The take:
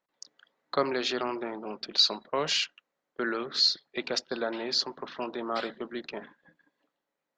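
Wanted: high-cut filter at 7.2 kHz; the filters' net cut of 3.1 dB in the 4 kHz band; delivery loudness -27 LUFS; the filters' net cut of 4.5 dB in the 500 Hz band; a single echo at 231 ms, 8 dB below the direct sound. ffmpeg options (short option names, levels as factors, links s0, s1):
-af "lowpass=7200,equalizer=f=500:t=o:g=-6,equalizer=f=4000:t=o:g=-3,aecho=1:1:231:0.398,volume=1.78"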